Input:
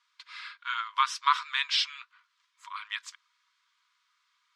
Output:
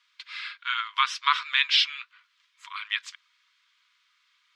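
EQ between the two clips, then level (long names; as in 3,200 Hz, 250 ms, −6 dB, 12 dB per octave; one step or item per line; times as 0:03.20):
dynamic equaliser 9,700 Hz, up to −6 dB, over −48 dBFS, Q 0.77
high-pass filter 1,100 Hz 12 dB per octave
parametric band 2,700 Hz +8.5 dB 1.8 octaves
0.0 dB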